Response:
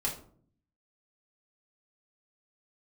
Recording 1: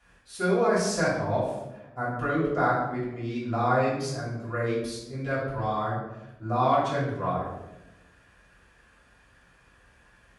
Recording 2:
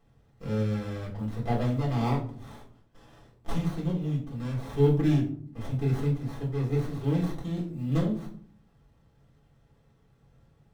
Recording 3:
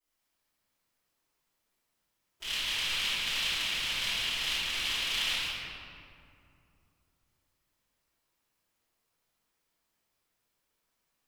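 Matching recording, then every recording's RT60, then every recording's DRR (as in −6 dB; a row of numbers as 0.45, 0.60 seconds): 2; 1.0, 0.55, 2.6 seconds; −9.5, −4.0, −22.0 decibels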